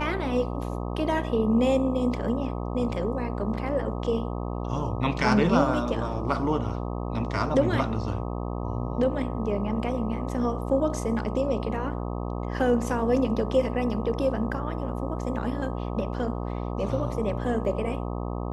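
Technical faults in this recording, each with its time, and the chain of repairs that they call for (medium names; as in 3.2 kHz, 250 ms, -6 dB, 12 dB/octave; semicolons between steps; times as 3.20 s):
buzz 60 Hz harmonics 21 -31 dBFS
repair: de-hum 60 Hz, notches 21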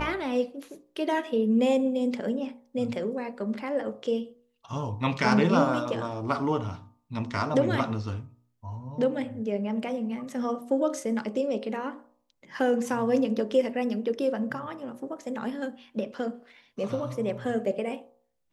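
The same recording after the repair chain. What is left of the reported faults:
nothing left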